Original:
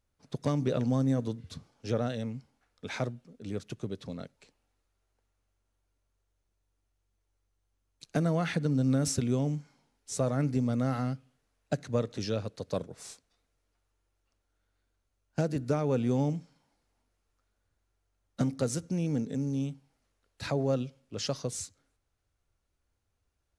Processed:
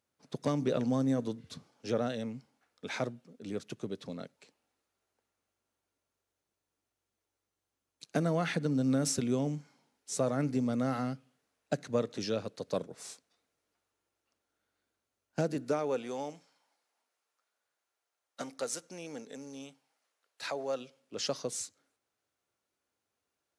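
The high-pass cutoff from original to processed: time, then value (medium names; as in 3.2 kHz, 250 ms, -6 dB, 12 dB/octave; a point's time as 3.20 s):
15.42 s 180 Hz
16.12 s 600 Hz
20.73 s 600 Hz
21.19 s 250 Hz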